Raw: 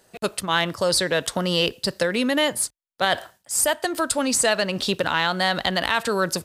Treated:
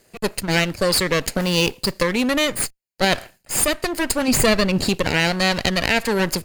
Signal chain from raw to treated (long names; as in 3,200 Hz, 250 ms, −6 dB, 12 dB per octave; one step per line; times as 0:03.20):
lower of the sound and its delayed copy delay 0.43 ms
0:01.40–0:01.92: floating-point word with a short mantissa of 2 bits
0:04.28–0:04.89: low-shelf EQ 410 Hz +6.5 dB
level +3 dB